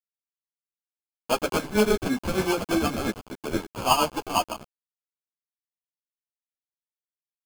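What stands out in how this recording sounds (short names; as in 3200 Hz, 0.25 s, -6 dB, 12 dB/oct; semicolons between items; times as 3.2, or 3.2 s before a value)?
aliases and images of a low sample rate 1900 Hz, jitter 0%; tremolo triangle 8.5 Hz, depth 75%; a quantiser's noise floor 6-bit, dither none; a shimmering, thickened sound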